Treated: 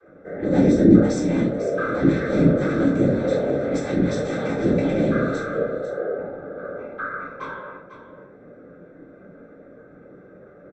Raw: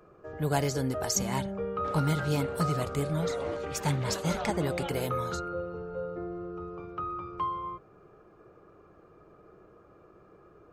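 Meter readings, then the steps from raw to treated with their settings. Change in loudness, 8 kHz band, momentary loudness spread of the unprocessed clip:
+10.5 dB, -7.5 dB, 10 LU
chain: one-sided wavefolder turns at -26.5 dBFS; in parallel at -0.5 dB: peak limiter -24.5 dBFS, peak gain reduction 10.5 dB; on the sum: vocoder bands 16, saw 258 Hz; comb 4.4 ms, depth 93%; whisper effect; on a send: delay 498 ms -12 dB; on the sum: simulated room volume 410 m³, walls furnished, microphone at 3.7 m; trim -4 dB

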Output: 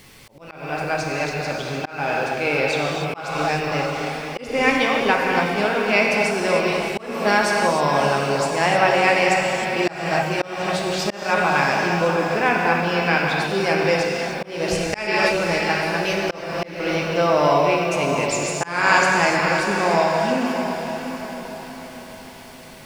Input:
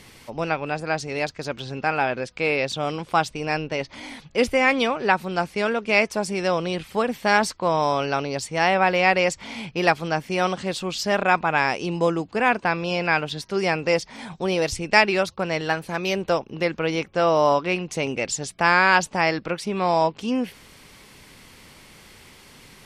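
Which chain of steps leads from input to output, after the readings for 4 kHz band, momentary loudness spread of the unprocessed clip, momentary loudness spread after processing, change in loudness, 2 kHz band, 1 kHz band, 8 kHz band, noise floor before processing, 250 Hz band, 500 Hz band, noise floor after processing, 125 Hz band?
+2.5 dB, 9 LU, 11 LU, +2.5 dB, +3.0 dB, +2.5 dB, +3.0 dB, -49 dBFS, +2.5 dB, +2.5 dB, -40 dBFS, +3.5 dB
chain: gated-style reverb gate 330 ms flat, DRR -1 dB; added noise white -56 dBFS; on a send: echo that smears into a reverb 615 ms, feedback 47%, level -7.5 dB; on the sum: slow attack 284 ms; trim -1 dB

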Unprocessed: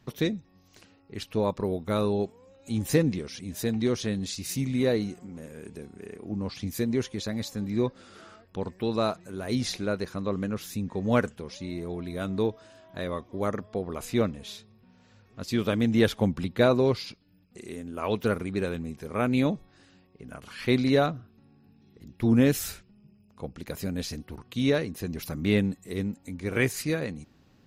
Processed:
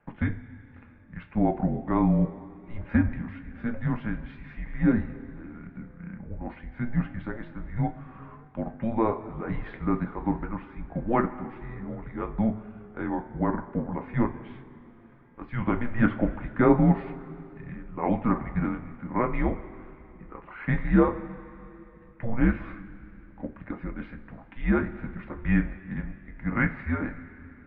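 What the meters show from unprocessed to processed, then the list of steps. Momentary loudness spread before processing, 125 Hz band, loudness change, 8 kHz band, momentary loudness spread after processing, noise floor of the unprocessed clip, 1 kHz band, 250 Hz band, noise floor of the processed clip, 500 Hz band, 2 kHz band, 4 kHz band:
17 LU, +1.5 dB, 0.0 dB, under -40 dB, 19 LU, -61 dBFS, +3.5 dB, +1.0 dB, -51 dBFS, -4.5 dB, +0.5 dB, under -20 dB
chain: two-slope reverb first 0.24 s, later 3.2 s, from -18 dB, DRR 4 dB; dynamic bell 910 Hz, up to +5 dB, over -46 dBFS, Q 2.6; mistuned SSB -230 Hz 280–2300 Hz; trim +1.5 dB

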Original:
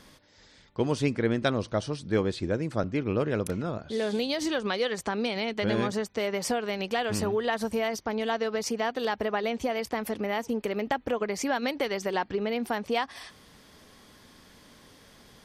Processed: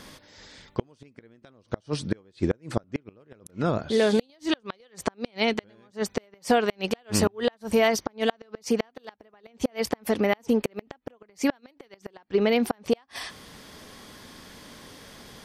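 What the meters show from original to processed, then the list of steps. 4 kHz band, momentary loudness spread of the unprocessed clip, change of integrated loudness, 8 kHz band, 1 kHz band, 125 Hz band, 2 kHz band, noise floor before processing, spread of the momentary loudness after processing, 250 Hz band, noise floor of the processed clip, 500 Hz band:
+1.0 dB, 4 LU, +2.0 dB, +2.0 dB, -1.0 dB, -1.0 dB, -0.5 dB, -56 dBFS, 22 LU, +2.0 dB, -64 dBFS, +1.5 dB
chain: bass shelf 96 Hz -3.5 dB; inverted gate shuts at -19 dBFS, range -36 dB; trim +8 dB

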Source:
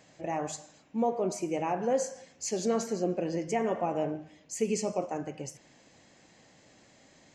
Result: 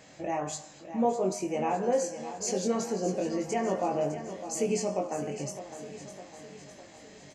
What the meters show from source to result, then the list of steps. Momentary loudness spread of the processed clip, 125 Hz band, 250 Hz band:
18 LU, +1.0 dB, +1.0 dB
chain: in parallel at +2.5 dB: compression, threshold -42 dBFS, peak gain reduction 18 dB; on the sum: doubling 21 ms -3.5 dB; feedback delay 607 ms, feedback 55%, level -11.5 dB; trim -3 dB

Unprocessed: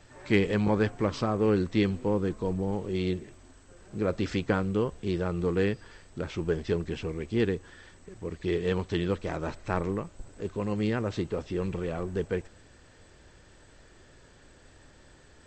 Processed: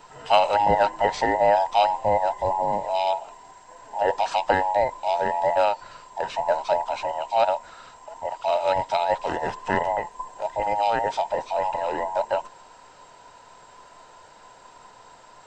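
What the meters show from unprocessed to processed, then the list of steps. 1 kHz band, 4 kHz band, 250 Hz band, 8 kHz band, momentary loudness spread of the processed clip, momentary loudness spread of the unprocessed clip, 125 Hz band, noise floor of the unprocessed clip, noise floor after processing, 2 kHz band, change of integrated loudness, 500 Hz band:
+18.5 dB, +7.0 dB, -9.5 dB, +6.0 dB, 11 LU, 11 LU, -10.5 dB, -56 dBFS, -50 dBFS, +6.0 dB, +6.0 dB, +6.0 dB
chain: every band turned upside down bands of 1 kHz; trim +5.5 dB

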